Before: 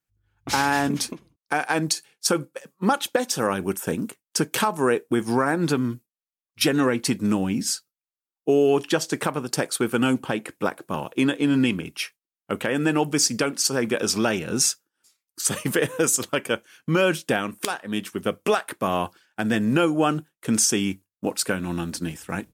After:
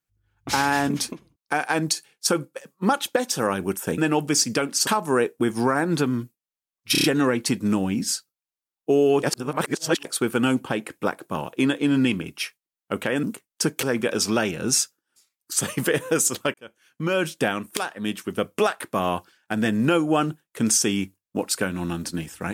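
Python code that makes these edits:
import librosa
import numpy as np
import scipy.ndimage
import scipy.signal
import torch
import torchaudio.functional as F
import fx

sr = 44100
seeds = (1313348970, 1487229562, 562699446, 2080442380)

y = fx.edit(x, sr, fx.swap(start_s=3.98, length_s=0.6, other_s=12.82, other_length_s=0.89),
    fx.stutter(start_s=6.63, slice_s=0.03, count=5),
    fx.reverse_span(start_s=8.82, length_s=0.82),
    fx.fade_in_span(start_s=16.42, length_s=0.87), tone=tone)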